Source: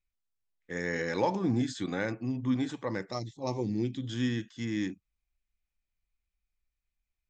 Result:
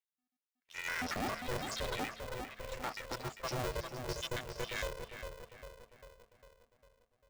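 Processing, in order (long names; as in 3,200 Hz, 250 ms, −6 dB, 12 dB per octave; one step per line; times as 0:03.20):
time-frequency cells dropped at random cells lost 66%
low-shelf EQ 430 Hz −6 dB
hum removal 93.3 Hz, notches 5
in parallel at −2 dB: output level in coarse steps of 23 dB
on the sum: brickwall limiter −30 dBFS, peak gain reduction 9 dB
leveller curve on the samples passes 2
0:02.08–0:02.72: transistor ladder low-pass 2,900 Hz, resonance 35%
tape delay 400 ms, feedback 63%, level −3.5 dB, low-pass 1,300 Hz
ring modulator with a square carrier 250 Hz
level −1.5 dB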